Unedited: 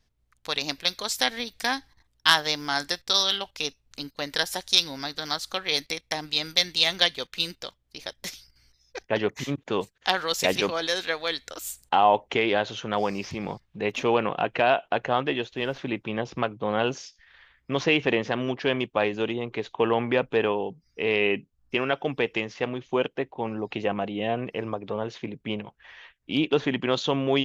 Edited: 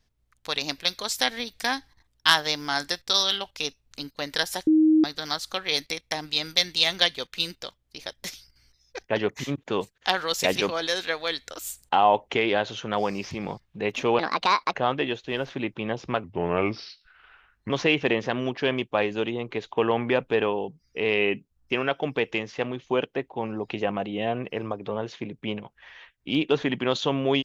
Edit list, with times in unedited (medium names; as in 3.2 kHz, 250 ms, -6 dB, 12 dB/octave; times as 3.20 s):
4.67–5.04 s: bleep 313 Hz -14.5 dBFS
14.19–15.02 s: speed 152%
16.52–17.72 s: speed 82%